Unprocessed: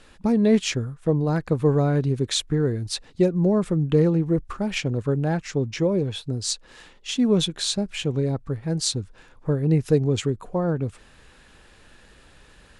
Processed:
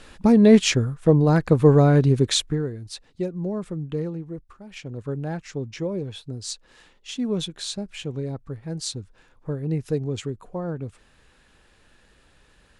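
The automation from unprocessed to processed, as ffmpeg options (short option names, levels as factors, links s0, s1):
-af "volume=7.08,afade=t=out:st=2.2:d=0.5:silence=0.223872,afade=t=out:st=3.81:d=0.83:silence=0.316228,afade=t=in:st=4.64:d=0.48:silence=0.251189"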